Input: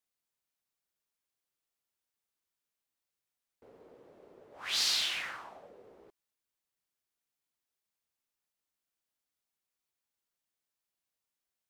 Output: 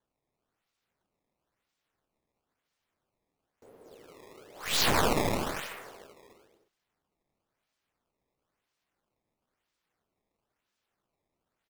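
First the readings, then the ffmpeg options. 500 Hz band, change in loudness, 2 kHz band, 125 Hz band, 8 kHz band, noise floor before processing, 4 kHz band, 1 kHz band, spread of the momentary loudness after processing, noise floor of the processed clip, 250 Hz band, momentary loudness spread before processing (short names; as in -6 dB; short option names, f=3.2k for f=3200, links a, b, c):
+19.0 dB, +2.0 dB, +5.0 dB, n/a, +3.0 dB, under -85 dBFS, -1.0 dB, +15.0 dB, 17 LU, under -85 dBFS, +24.0 dB, 17 LU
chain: -af "aecho=1:1:230|379.5|476.7|539.8|580.9:0.631|0.398|0.251|0.158|0.1,acrusher=samples=17:mix=1:aa=0.000001:lfo=1:lforange=27.2:lforate=1,aeval=exprs='0.133*(cos(1*acos(clip(val(0)/0.133,-1,1)))-cos(1*PI/2))+0.0237*(cos(6*acos(clip(val(0)/0.133,-1,1)))-cos(6*PI/2))':c=same,volume=2.5dB"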